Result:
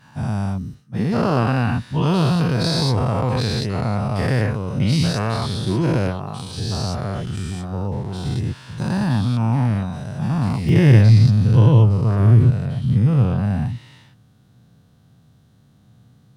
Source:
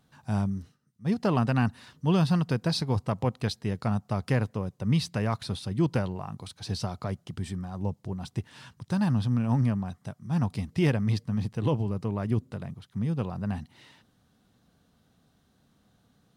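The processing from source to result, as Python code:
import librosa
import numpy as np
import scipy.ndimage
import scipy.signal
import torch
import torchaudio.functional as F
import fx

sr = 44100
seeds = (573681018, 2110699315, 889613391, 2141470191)

y = fx.spec_dilate(x, sr, span_ms=240)
y = fx.peak_eq(y, sr, hz=120.0, db=fx.steps((0.0, 4.5), (10.69, 15.0)), octaves=0.94)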